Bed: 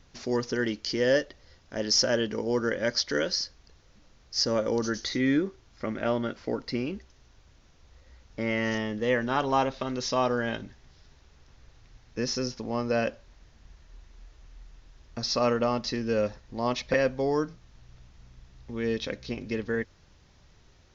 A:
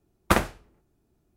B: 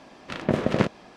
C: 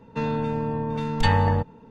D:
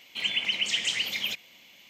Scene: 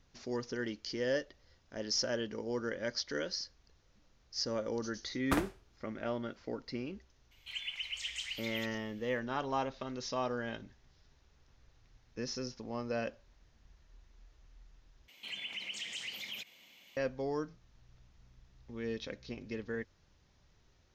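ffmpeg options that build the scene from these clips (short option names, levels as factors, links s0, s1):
-filter_complex "[4:a]asplit=2[s0][s1];[0:a]volume=0.335[s2];[s0]highpass=1100[s3];[s1]acompressor=threshold=0.0158:ratio=2:attack=0.36:release=78:knee=1:detection=rms[s4];[s2]asplit=2[s5][s6];[s5]atrim=end=15.084[s7];[s4]atrim=end=1.89,asetpts=PTS-STARTPTS,volume=0.501[s8];[s6]atrim=start=16.966[s9];[1:a]atrim=end=1.36,asetpts=PTS-STARTPTS,volume=0.251,afade=t=in:d=0.004:c=hsin,afade=t=out:st=1.356:d=0.004:c=hsin,adelay=220941S[s10];[s3]atrim=end=1.89,asetpts=PTS-STARTPTS,volume=0.237,afade=t=in:d=0.004:c=hsin,afade=t=out:st=1.886:d=0.004:c=hsin,adelay=7310[s11];[s7][s8]acrossfade=d=0.004:c1=hsin:c2=hsin[s12];[s12][s9]acrossfade=d=0.004:c1=hsin:c2=hsin[s13];[s13][s10][s11]amix=inputs=3:normalize=0"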